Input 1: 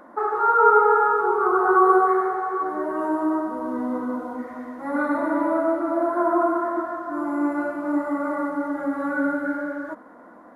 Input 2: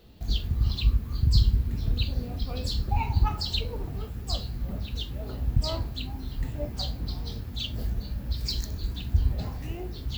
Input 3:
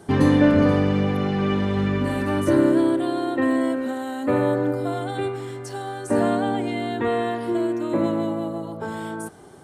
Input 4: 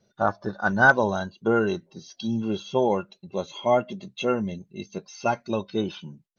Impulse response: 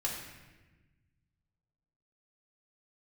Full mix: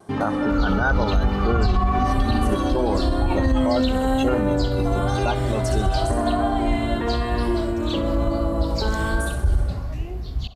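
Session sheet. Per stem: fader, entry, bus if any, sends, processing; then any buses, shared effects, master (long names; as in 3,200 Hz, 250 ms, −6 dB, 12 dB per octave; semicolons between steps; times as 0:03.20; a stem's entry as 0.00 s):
+0.5 dB, 0.00 s, no send, no echo send, formant filter a
+0.5 dB, 0.30 s, no send, echo send −15.5 dB, Bessel low-pass filter 10,000 Hz, order 4; low-shelf EQ 85 Hz +10 dB
−5.0 dB, 0.00 s, no send, echo send −5 dB, automatic gain control gain up to 13 dB; brickwall limiter −12.5 dBFS, peak gain reduction 11 dB
+0.5 dB, 0.00 s, no send, no echo send, no processing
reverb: not used
echo: repeating echo 65 ms, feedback 54%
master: pitch vibrato 0.99 Hz 26 cents; brickwall limiter −11 dBFS, peak gain reduction 9.5 dB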